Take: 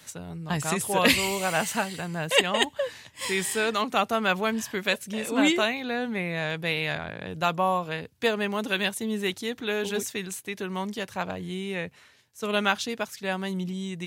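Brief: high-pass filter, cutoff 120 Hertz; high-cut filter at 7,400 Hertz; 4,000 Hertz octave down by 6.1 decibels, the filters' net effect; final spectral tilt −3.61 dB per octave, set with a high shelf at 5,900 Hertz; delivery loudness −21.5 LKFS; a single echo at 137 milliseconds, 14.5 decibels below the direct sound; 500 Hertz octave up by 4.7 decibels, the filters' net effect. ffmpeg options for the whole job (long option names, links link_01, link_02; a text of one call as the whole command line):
ffmpeg -i in.wav -af "highpass=120,lowpass=7400,equalizer=frequency=500:width_type=o:gain=6,equalizer=frequency=4000:width_type=o:gain=-7,highshelf=frequency=5900:gain=-4.5,aecho=1:1:137:0.188,volume=4.5dB" out.wav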